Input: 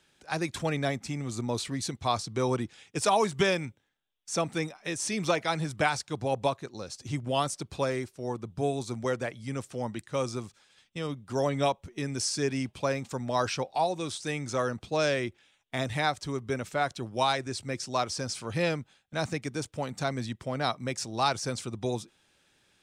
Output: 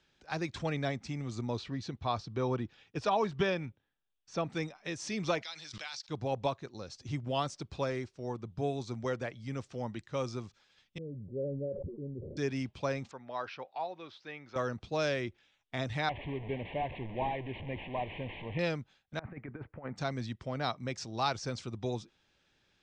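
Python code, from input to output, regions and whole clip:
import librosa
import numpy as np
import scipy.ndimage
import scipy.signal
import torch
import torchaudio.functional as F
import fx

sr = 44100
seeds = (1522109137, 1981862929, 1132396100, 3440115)

y = fx.chain(x, sr, fx.peak_eq(hz=8500.0, db=-12.5, octaves=1.3),
    fx.notch(hz=2100.0, q=13.0), at=(1.57, 4.5))
y = fx.chain(y, sr, fx.bandpass_q(hz=4600.0, q=1.5),
    fx.pre_swell(db_per_s=31.0), at=(5.43, 6.09))
y = fx.chain(y, sr, fx.cheby_ripple(hz=570.0, ripple_db=3),
    fx.low_shelf(hz=250.0, db=-6.0),
    fx.sustainer(db_per_s=34.0), at=(10.98, 12.37))
y = fx.chain(y, sr, fx.highpass(hz=910.0, slope=6),
    fx.air_absorb(metres=330.0), at=(13.11, 14.56))
y = fx.chain(y, sr, fx.delta_mod(bps=16000, step_db=-32.0),
    fx.cheby1_bandstop(low_hz=930.0, high_hz=2000.0, order=2), at=(16.09, 18.59))
y = fx.chain(y, sr, fx.steep_lowpass(hz=2100.0, slope=36),
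    fx.low_shelf(hz=200.0, db=-6.0),
    fx.over_compress(threshold_db=-37.0, ratio=-0.5), at=(19.19, 19.96))
y = scipy.signal.sosfilt(scipy.signal.butter(4, 6100.0, 'lowpass', fs=sr, output='sos'), y)
y = fx.low_shelf(y, sr, hz=76.0, db=8.0)
y = y * librosa.db_to_amplitude(-5.0)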